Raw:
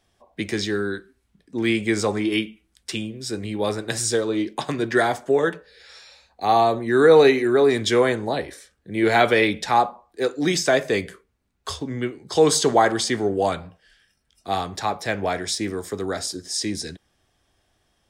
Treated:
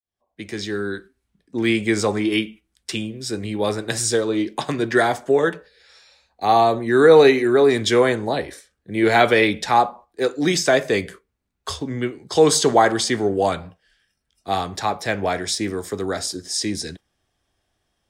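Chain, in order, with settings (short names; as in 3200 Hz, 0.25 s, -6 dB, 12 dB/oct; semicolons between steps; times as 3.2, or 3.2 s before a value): opening faded in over 1.11 s; gate -42 dBFS, range -7 dB; gain +2 dB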